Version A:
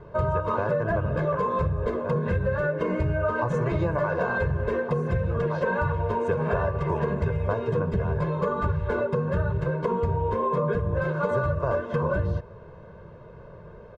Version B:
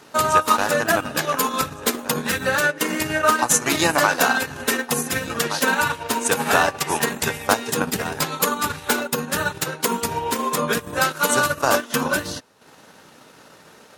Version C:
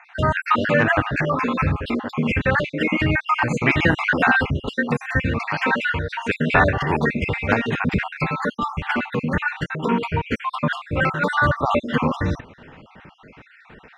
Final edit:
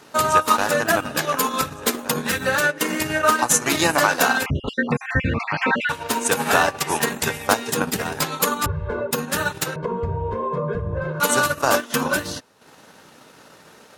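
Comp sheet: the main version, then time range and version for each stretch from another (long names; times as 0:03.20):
B
0:04.46–0:05.89: punch in from C
0:08.66–0:09.11: punch in from A
0:09.76–0:11.20: punch in from A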